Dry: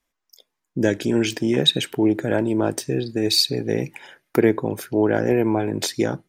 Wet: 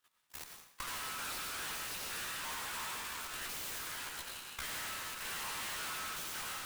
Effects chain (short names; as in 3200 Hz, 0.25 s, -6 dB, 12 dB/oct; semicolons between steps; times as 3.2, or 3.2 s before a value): half-waves squared off; sample-rate reducer 14000 Hz, jitter 0%; high shelf 9900 Hz +10 dB; wide varispeed 1.7×; rippled Chebyshev high-pass 940 Hz, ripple 3 dB; whisperiser; granular stretch 1.8×, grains 59 ms; level quantiser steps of 13 dB; reverb RT60 0.95 s, pre-delay 50 ms, DRR 4 dB; tube stage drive 41 dB, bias 0.8; compressor 8:1, threshold -54 dBFS, peak gain reduction 12.5 dB; noise-modulated delay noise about 5400 Hz, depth 0.044 ms; gain +14 dB